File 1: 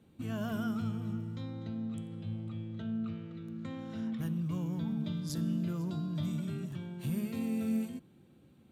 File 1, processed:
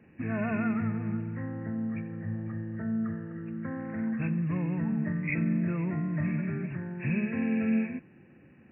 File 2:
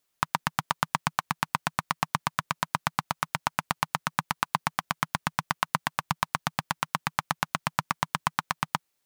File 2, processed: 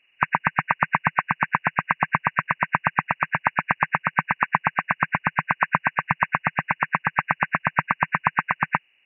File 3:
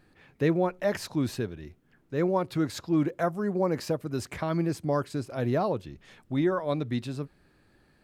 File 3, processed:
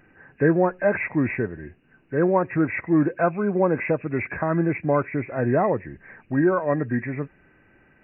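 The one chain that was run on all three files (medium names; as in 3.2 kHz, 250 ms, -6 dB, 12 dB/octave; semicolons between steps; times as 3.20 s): knee-point frequency compression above 1.5 kHz 4:1; bass shelf 120 Hz -5.5 dB; trim +6.5 dB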